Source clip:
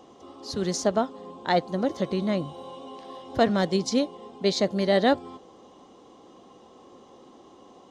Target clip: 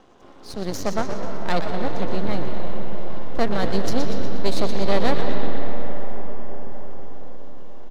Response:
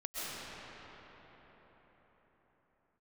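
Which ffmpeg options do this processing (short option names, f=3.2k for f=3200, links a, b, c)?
-filter_complex "[0:a]asplit=9[a][b][c][d][e][f][g][h][i];[b]adelay=121,afreqshift=-82,volume=-7.5dB[j];[c]adelay=242,afreqshift=-164,volume=-12.1dB[k];[d]adelay=363,afreqshift=-246,volume=-16.7dB[l];[e]adelay=484,afreqshift=-328,volume=-21.2dB[m];[f]adelay=605,afreqshift=-410,volume=-25.8dB[n];[g]adelay=726,afreqshift=-492,volume=-30.4dB[o];[h]adelay=847,afreqshift=-574,volume=-35dB[p];[i]adelay=968,afreqshift=-656,volume=-39.6dB[q];[a][j][k][l][m][n][o][p][q]amix=inputs=9:normalize=0,aeval=exprs='max(val(0),0)':c=same,asplit=2[r][s];[1:a]atrim=start_sample=2205,asetrate=33957,aresample=44100,lowpass=5.5k[t];[s][t]afir=irnorm=-1:irlink=0,volume=-9dB[u];[r][u]amix=inputs=2:normalize=0"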